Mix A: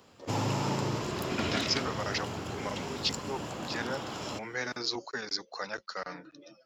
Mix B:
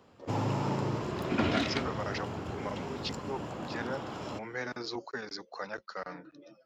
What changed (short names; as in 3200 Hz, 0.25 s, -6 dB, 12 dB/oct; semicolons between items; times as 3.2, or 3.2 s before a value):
second sound +5.5 dB; master: add high shelf 2900 Hz -12 dB